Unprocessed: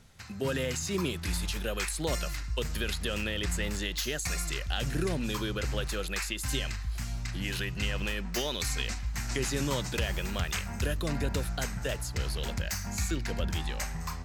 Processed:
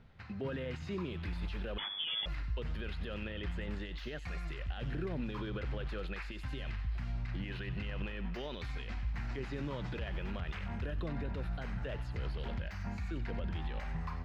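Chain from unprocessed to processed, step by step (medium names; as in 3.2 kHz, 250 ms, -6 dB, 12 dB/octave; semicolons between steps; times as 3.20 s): peak limiter -27.5 dBFS, peak gain reduction 11 dB; distance through air 370 m; feedback echo behind a high-pass 93 ms, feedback 50%, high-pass 2.1 kHz, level -9.5 dB; 1.78–2.26 s: frequency inversion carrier 3.4 kHz; trim -1 dB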